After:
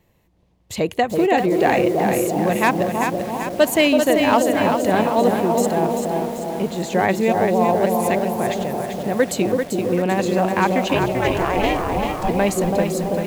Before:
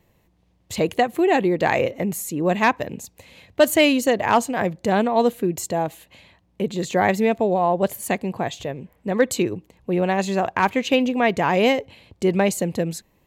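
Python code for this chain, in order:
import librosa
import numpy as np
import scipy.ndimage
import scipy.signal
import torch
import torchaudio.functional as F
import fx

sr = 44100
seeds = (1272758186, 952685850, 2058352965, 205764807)

y = fx.echo_bbd(x, sr, ms=331, stages=2048, feedback_pct=58, wet_db=-3.5)
y = fx.ring_mod(y, sr, carrier_hz=fx.line((10.93, 100.0), (12.28, 400.0)), at=(10.93, 12.28), fade=0.02)
y = fx.echo_crushed(y, sr, ms=390, feedback_pct=55, bits=6, wet_db=-5.5)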